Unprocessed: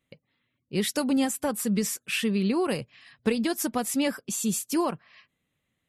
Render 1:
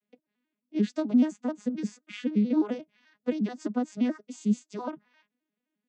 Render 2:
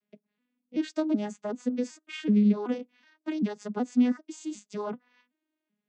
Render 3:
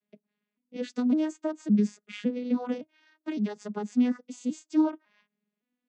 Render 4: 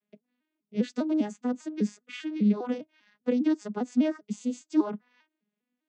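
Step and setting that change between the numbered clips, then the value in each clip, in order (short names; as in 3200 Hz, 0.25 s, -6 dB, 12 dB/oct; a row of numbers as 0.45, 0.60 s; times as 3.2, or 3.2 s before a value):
arpeggiated vocoder, a note every: 87, 379, 561, 200 ms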